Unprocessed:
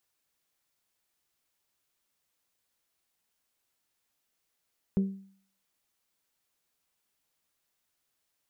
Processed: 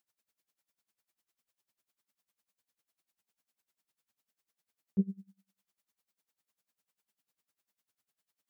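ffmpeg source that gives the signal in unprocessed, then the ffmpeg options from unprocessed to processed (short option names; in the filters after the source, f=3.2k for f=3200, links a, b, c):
-f lavfi -i "aevalsrc='0.1*pow(10,-3*t/0.53)*sin(2*PI*194*t)+0.0282*pow(10,-3*t/0.326)*sin(2*PI*388*t)+0.00794*pow(10,-3*t/0.287)*sin(2*PI*465.6*t)+0.00224*pow(10,-3*t/0.246)*sin(2*PI*582*t)+0.000631*pow(10,-3*t/0.201)*sin(2*PI*776*t)':d=0.89:s=44100"
-af "highpass=85,equalizer=f=210:w=5.1:g=6,aeval=exprs='val(0)*pow(10,-24*(0.5-0.5*cos(2*PI*10*n/s))/20)':c=same"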